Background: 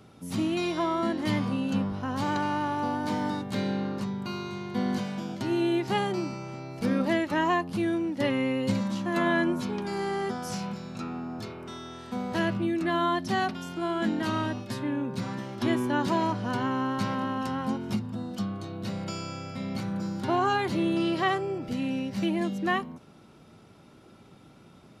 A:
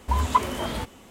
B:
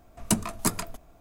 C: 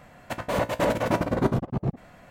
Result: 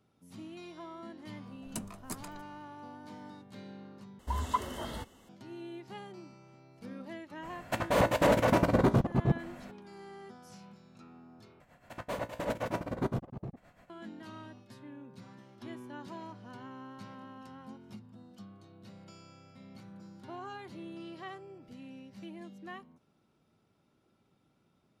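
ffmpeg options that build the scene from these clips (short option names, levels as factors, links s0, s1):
-filter_complex "[3:a]asplit=2[s0][s1];[0:a]volume=0.119[s2];[1:a]asuperstop=centerf=2400:order=20:qfactor=6.6[s3];[s0]alimiter=limit=0.2:level=0:latency=1:release=47[s4];[s1]tremolo=f=7.7:d=0.68[s5];[s2]asplit=3[s6][s7][s8];[s6]atrim=end=4.194[s9];[s3]atrim=end=1.1,asetpts=PTS-STARTPTS,volume=0.316[s10];[s7]atrim=start=5.286:end=11.604[s11];[s5]atrim=end=2.3,asetpts=PTS-STARTPTS,volume=0.422[s12];[s8]atrim=start=13.896[s13];[2:a]atrim=end=1.2,asetpts=PTS-STARTPTS,volume=0.168,afade=t=in:d=0.004:c=hsin,afade=t=out:st=1.196:d=0.004:c=hsin,adelay=1450[s14];[s4]atrim=end=2.3,asetpts=PTS-STARTPTS,afade=t=in:d=0.02,afade=t=out:st=2.28:d=0.02,adelay=7420[s15];[s9][s10]acrossfade=d=0.004:c1=hsin:c2=hsin[s16];[s16][s11]acrossfade=d=0.004:c1=hsin:c2=hsin[s17];[s17][s12]acrossfade=d=0.004:c1=hsin:c2=hsin[s18];[s18][s13]acrossfade=d=0.004:c1=hsin:c2=hsin[s19];[s19][s14][s15]amix=inputs=3:normalize=0"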